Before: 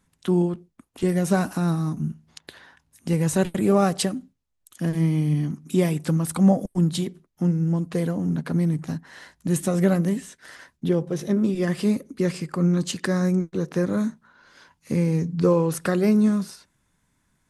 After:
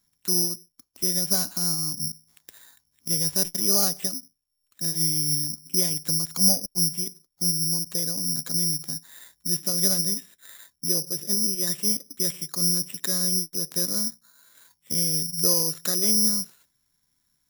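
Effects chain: high shelf 3000 Hz +9.5 dB; careless resampling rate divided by 8×, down filtered, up zero stuff; gain -12 dB

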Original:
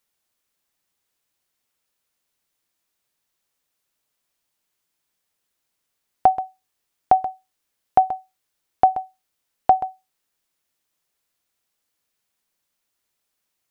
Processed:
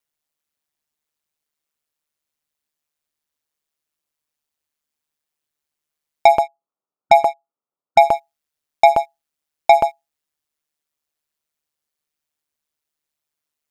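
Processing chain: 6.39–8.04 brick-wall FIR band-pass 190–1400 Hz; sample leveller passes 3; ring modulator 75 Hz; gain +2.5 dB

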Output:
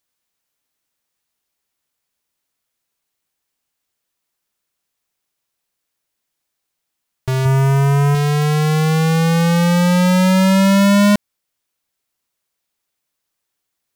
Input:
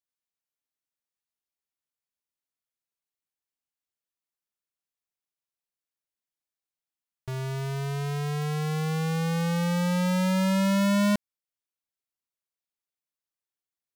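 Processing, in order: in parallel at +2 dB: limiter -33 dBFS, peak gain reduction 11.5 dB; 7.45–8.15 on the sum: fifteen-band EQ 100 Hz +10 dB, 1000 Hz +5 dB, 4000 Hz -11 dB; gain +8.5 dB

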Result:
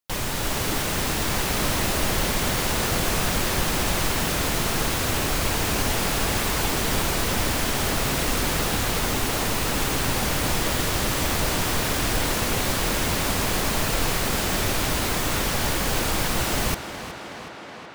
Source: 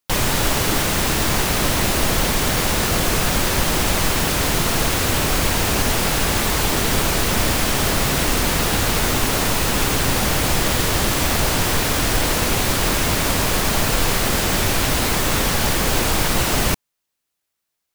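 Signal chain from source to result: AGC gain up to 5 dB; tape echo 0.371 s, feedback 83%, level -10 dB, low-pass 5600 Hz; gain -8.5 dB

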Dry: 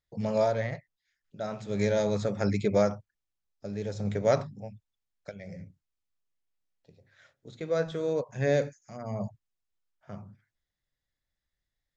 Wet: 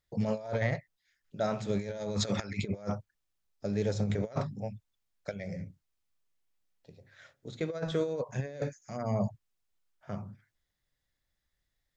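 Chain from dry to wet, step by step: 2.2–2.6 bell 5200 Hz -> 1700 Hz +14.5 dB 2.8 oct; negative-ratio compressor -31 dBFS, ratio -0.5

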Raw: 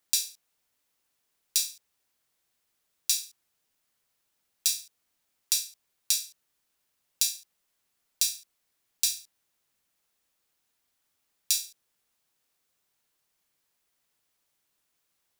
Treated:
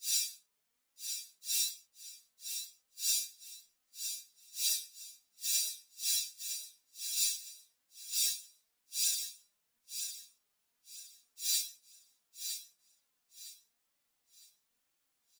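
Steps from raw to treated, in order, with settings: phase scrambler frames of 0.2 s; flange 1 Hz, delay 3.4 ms, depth 1.6 ms, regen +48%; feedback echo 0.96 s, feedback 30%, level -8 dB

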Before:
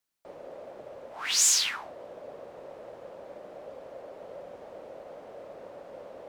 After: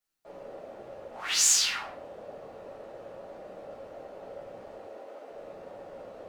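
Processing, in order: 4.75–5.3 HPF 260 Hz 24 dB/oct; shoebox room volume 61 m³, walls mixed, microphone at 1.4 m; gain -6.5 dB

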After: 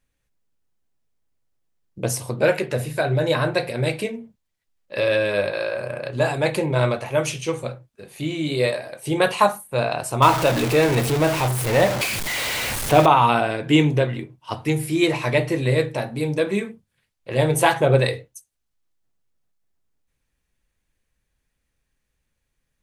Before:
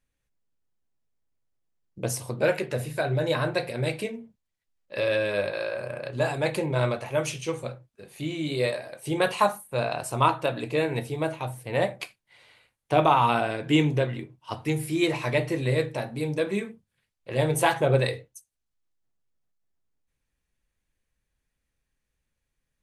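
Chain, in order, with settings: 10.22–13.06 zero-crossing step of -24.5 dBFS; gain +5 dB

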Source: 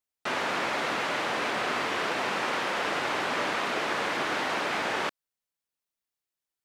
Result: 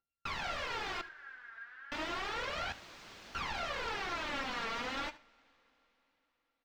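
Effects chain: sample sorter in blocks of 32 samples; wrapped overs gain 27.5 dB; phaser 0.32 Hz, delay 4.5 ms, feedback 71%; 1.01–1.92 band-pass 1600 Hz, Q 16; 2.72–3.35 wrapped overs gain 33.5 dB; air absorption 200 m; echo 76 ms -18.5 dB; reverb, pre-delay 3 ms, DRR 15.5 dB; gain -6 dB

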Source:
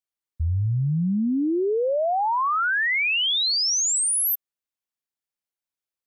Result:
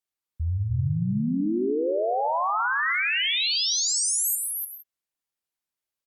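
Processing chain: 0.6–1.29 dynamic EQ 450 Hz, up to -4 dB, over -45 dBFS, Q 1.9; limiter -23.5 dBFS, peak gain reduction 4 dB; on a send: echo 0.298 s -4.5 dB; on the sum: non-linear reverb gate 0.19 s rising, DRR 8.5 dB; Opus 192 kbps 48000 Hz

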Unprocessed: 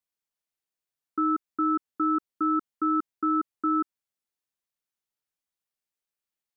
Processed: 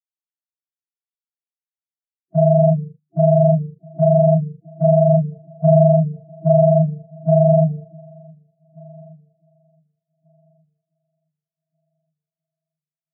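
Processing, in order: sine-wave speech; bell 540 Hz +4 dB 0.77 oct; notches 50/100/150/200/250/300/350/400/450 Hz; compressor 4:1, threshold -26 dBFS, peak gain reduction 5.5 dB; sample leveller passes 5; loudest bins only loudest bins 8; dark delay 0.743 s, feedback 32%, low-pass 1300 Hz, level -15 dB; speed mistake 15 ips tape played at 7.5 ips; three-band expander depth 70%; gain +8.5 dB

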